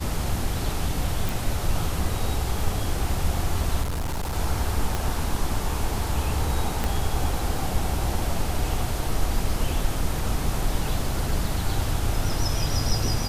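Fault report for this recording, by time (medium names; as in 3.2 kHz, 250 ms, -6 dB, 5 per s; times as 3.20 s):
1.29 s: pop
3.82–4.34 s: clipped -24 dBFS
4.95 s: pop
6.84 s: pop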